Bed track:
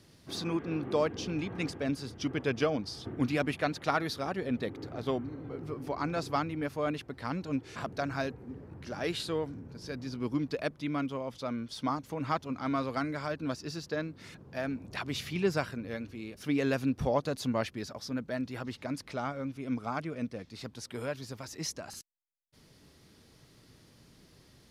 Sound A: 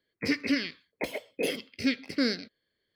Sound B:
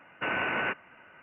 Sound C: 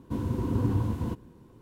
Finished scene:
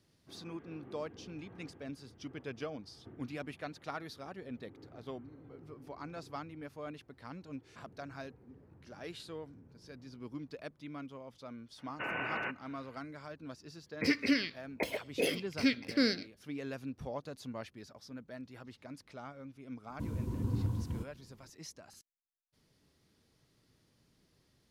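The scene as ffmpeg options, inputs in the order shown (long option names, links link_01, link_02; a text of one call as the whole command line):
ffmpeg -i bed.wav -i cue0.wav -i cue1.wav -i cue2.wav -filter_complex "[0:a]volume=-12dB[link_01];[3:a]bass=frequency=250:gain=7,treble=frequency=4000:gain=8[link_02];[2:a]atrim=end=1.22,asetpts=PTS-STARTPTS,volume=-7.5dB,afade=type=in:duration=0.004:curve=hsin,afade=type=out:start_time=1.216:duration=0.004:curve=hsin,adelay=519498S[link_03];[1:a]atrim=end=2.95,asetpts=PTS-STARTPTS,volume=-2dB,afade=type=in:duration=0.004:curve=hsin,afade=type=out:start_time=2.946:duration=0.004:curve=hsin,adelay=13790[link_04];[link_02]atrim=end=1.61,asetpts=PTS-STARTPTS,volume=-13dB,afade=type=in:duration=0.004:curve=hsin,afade=type=out:start_time=1.606:duration=0.004:curve=hsin,adelay=19890[link_05];[link_01][link_03][link_04][link_05]amix=inputs=4:normalize=0" out.wav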